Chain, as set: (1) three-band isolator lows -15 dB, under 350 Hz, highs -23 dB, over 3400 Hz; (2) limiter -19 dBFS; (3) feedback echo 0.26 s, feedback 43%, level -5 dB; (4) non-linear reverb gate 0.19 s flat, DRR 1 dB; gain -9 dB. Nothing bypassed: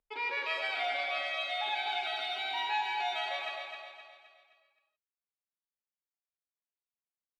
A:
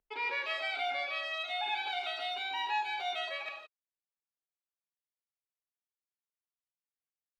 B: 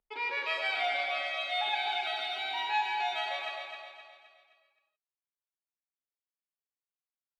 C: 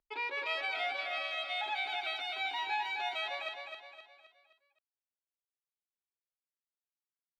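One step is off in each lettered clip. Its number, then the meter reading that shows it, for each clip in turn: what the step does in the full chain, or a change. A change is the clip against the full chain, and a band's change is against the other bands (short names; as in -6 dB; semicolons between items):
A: 3, echo-to-direct 1.5 dB to -1.0 dB; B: 2, momentary loudness spread change +2 LU; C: 4, loudness change -2.0 LU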